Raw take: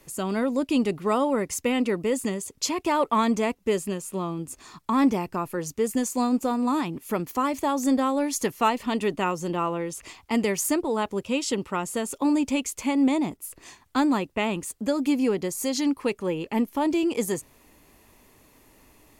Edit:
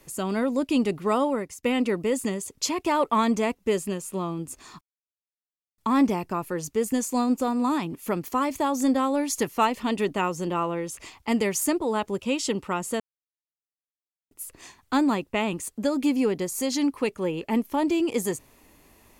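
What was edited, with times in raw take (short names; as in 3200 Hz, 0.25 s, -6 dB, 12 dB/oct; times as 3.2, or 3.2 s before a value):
1.25–1.63 fade out, to -21.5 dB
4.81 insert silence 0.97 s
12.03–13.34 mute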